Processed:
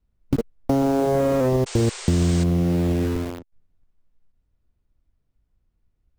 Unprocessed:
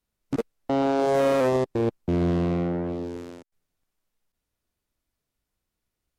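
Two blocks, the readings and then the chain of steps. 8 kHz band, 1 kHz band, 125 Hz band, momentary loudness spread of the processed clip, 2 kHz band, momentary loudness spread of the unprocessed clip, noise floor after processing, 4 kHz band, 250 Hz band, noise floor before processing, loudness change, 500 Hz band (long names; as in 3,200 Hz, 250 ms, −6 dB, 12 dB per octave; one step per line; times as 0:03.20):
can't be measured, −0.5 dB, +8.0 dB, 7 LU, −0.5 dB, 12 LU, −71 dBFS, +5.5 dB, +4.5 dB, −84 dBFS, +3.0 dB, +1.0 dB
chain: RIAA equalisation playback
in parallel at −4 dB: bit reduction 5 bits
on the sum: downward compressor 6 to 1, threshold −17 dBFS, peak gain reduction 10.5 dB
sound drawn into the spectrogram noise, 0:01.66–0:02.44, 360–9,000 Hz −36 dBFS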